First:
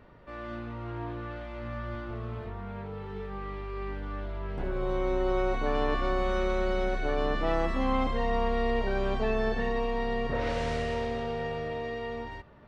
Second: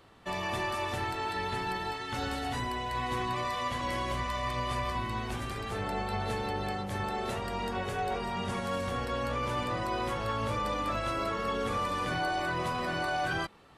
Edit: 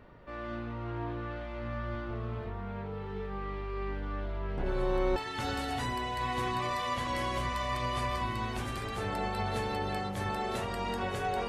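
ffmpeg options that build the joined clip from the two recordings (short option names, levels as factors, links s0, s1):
-filter_complex "[1:a]asplit=2[s0][s1];[0:a]apad=whole_dur=11.48,atrim=end=11.48,atrim=end=5.162[s2];[s1]atrim=start=1.898:end=8.22[s3];[s0]atrim=start=1.4:end=1.9,asetpts=PTS-STARTPTS,volume=0.237,afade=t=in:d=0.004:c=hsin,afade=t=out:st=0.496:d=0.004:c=hsin,adelay=4660[s4];[s2][s3]acrossfade=d=0.004:c1=hsin:c2=hsin[s5];[s5][s4]amix=inputs=2:normalize=0"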